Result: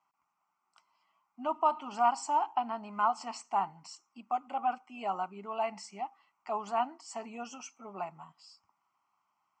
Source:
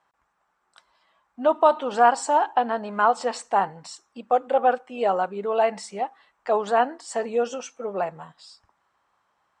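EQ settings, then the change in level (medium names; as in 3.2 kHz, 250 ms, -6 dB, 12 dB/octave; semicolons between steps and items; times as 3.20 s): high-pass 160 Hz 12 dB/octave; static phaser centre 2.5 kHz, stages 8; -6.5 dB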